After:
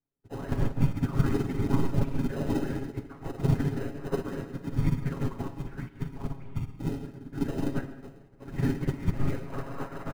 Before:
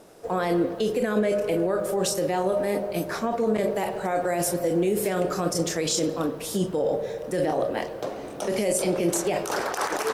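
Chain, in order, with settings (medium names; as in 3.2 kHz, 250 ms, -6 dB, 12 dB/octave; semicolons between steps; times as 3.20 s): time-frequency box 6.37–6.80 s, 440–1400 Hz -17 dB; mistuned SSB -300 Hz 180–2500 Hz; whisper effect; in parallel at -7.5 dB: sample-and-hold 39×; on the sum: comb 7.3 ms, depth 71%; on a send at -3 dB: reverberation RT60 1.8 s, pre-delay 35 ms; on the sum: upward expansion 2.5:1, over -40 dBFS; trim -3.5 dB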